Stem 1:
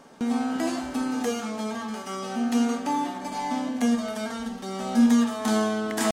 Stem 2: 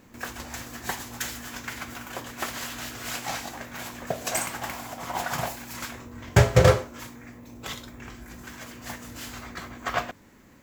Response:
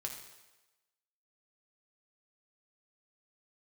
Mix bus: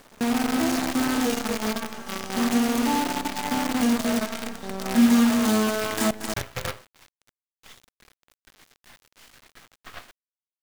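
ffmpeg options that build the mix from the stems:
-filter_complex "[0:a]volume=-1.5dB,asplit=3[a][b][c];[b]volume=-15.5dB[d];[c]volume=-5.5dB[e];[1:a]lowpass=3.5k,tiltshelf=f=970:g=-8.5,volume=-12dB[f];[2:a]atrim=start_sample=2205[g];[d][g]afir=irnorm=-1:irlink=0[h];[e]aecho=0:1:230:1[i];[a][f][h][i]amix=inputs=4:normalize=0,lowshelf=f=220:g=4.5,acrusher=bits=5:dc=4:mix=0:aa=0.000001"

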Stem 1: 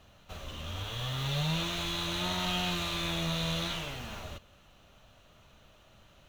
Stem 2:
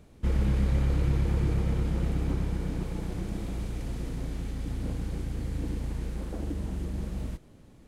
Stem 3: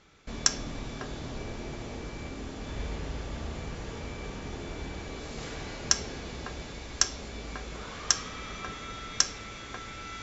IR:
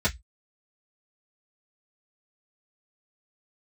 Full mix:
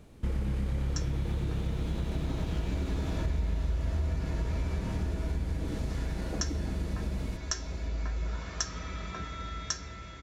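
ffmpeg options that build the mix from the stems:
-filter_complex "[0:a]volume=-13.5dB[a];[1:a]volume=1dB[b];[2:a]dynaudnorm=f=260:g=11:m=14dB,adelay=500,volume=-11.5dB,asplit=2[c][d];[d]volume=-9dB[e];[3:a]atrim=start_sample=2205[f];[e][f]afir=irnorm=-1:irlink=0[g];[a][b][c][g]amix=inputs=4:normalize=0,acompressor=threshold=-28dB:ratio=5"

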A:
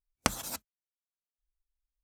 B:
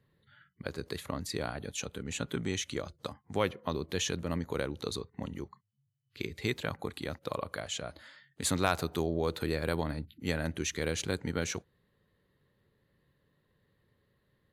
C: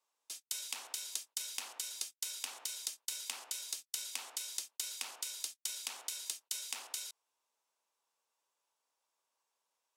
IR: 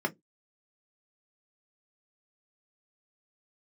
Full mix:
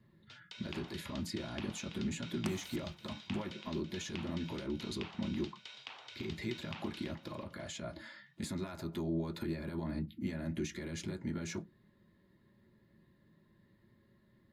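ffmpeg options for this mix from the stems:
-filter_complex "[0:a]adelay=2200,volume=-18dB,asplit=2[a][b];[b]volume=-20dB[c];[1:a]equalizer=f=480:w=5.6:g=-12.5,acompressor=threshold=-37dB:ratio=6,alimiter=level_in=9dB:limit=-24dB:level=0:latency=1:release=42,volume=-9dB,volume=0.5dB,asplit=2[d][e];[e]volume=-4dB[f];[2:a]lowpass=f=3.4k:w=0.5412,lowpass=f=3.4k:w=1.3066,volume=-0.5dB,asplit=2[g][h];[h]volume=-9.5dB[i];[3:a]atrim=start_sample=2205[j];[f][j]afir=irnorm=-1:irlink=0[k];[c][i]amix=inputs=2:normalize=0,aecho=0:1:331|662|993|1324|1655|1986:1|0.46|0.212|0.0973|0.0448|0.0206[l];[a][d][g][k][l]amix=inputs=5:normalize=0"

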